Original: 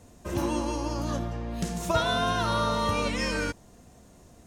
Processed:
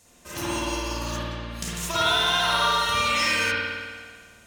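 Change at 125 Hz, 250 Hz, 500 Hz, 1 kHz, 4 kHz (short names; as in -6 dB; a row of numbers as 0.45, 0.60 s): -3.5, -4.0, -1.5, +4.0, +10.0 dB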